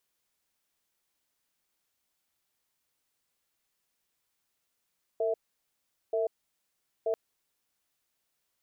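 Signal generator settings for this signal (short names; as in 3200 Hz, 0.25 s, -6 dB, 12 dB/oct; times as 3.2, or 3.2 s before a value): cadence 453 Hz, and 657 Hz, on 0.14 s, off 0.79 s, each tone -28.5 dBFS 1.94 s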